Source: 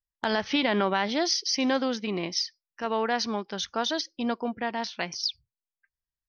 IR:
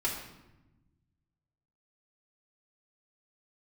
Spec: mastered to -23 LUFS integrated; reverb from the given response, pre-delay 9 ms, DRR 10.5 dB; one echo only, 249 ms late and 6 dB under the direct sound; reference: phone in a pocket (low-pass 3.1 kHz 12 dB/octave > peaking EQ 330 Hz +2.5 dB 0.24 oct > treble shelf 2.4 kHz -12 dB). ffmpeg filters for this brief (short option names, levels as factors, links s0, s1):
-filter_complex "[0:a]aecho=1:1:249:0.501,asplit=2[s0][s1];[1:a]atrim=start_sample=2205,adelay=9[s2];[s1][s2]afir=irnorm=-1:irlink=0,volume=0.141[s3];[s0][s3]amix=inputs=2:normalize=0,lowpass=3100,equalizer=f=330:t=o:w=0.24:g=2.5,highshelf=f=2400:g=-12,volume=2"